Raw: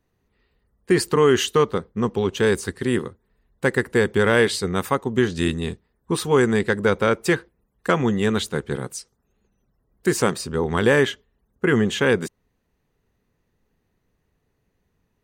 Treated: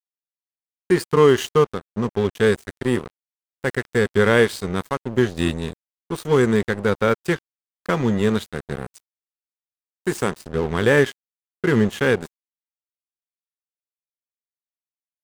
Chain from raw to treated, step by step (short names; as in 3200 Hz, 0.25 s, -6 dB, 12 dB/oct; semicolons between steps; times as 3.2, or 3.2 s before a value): harmonic-percussive split percussive -6 dB; crossover distortion -33 dBFS; gain +4 dB